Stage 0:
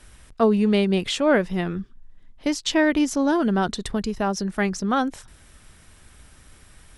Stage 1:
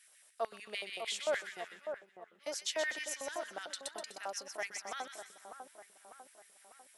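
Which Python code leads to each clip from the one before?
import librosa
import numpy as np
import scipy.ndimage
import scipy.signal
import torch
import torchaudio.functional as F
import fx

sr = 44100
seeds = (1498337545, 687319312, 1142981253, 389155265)

y = fx.filter_lfo_highpass(x, sr, shape='square', hz=6.7, low_hz=620.0, high_hz=1900.0, q=3.0)
y = scipy.signal.lfilter([1.0, -0.8], [1.0], y)
y = fx.echo_split(y, sr, split_hz=1400.0, low_ms=598, high_ms=125, feedback_pct=52, wet_db=-7)
y = F.gain(torch.from_numpy(y), -7.5).numpy()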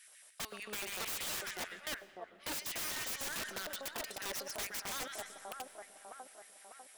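y = (np.mod(10.0 ** (38.5 / 20.0) * x + 1.0, 2.0) - 1.0) / 10.0 ** (38.5 / 20.0)
y = fx.rev_freeverb(y, sr, rt60_s=3.0, hf_ratio=0.5, predelay_ms=60, drr_db=17.5)
y = F.gain(torch.from_numpy(y), 4.5).numpy()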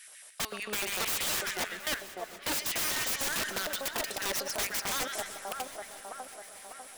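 y = fx.echo_swing(x, sr, ms=967, ratio=3, feedback_pct=42, wet_db=-18.0)
y = F.gain(torch.from_numpy(y), 8.0).numpy()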